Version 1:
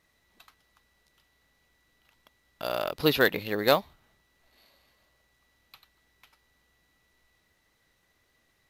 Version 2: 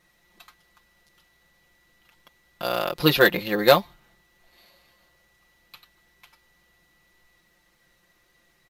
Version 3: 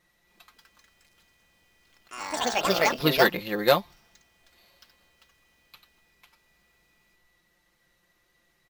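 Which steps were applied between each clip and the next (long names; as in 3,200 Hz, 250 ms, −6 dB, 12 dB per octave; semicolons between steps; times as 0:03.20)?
comb filter 5.7 ms, depth 80%; level +3.5 dB
delay with pitch and tempo change per echo 269 ms, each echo +4 semitones, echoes 3; level −4.5 dB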